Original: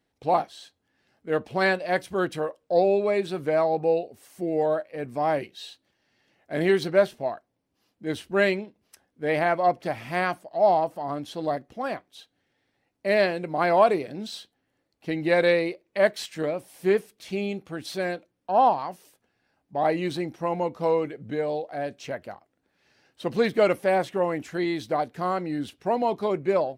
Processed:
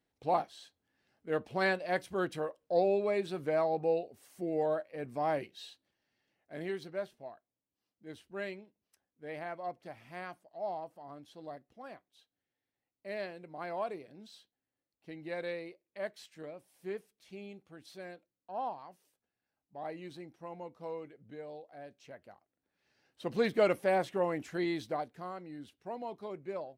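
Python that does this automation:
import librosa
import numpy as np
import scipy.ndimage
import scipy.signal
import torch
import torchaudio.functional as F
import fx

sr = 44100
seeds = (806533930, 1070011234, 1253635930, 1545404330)

y = fx.gain(x, sr, db=fx.line((5.57, -7.5), (6.9, -18.0), (22.05, -18.0), (23.48, -6.5), (24.77, -6.5), (25.32, -16.5)))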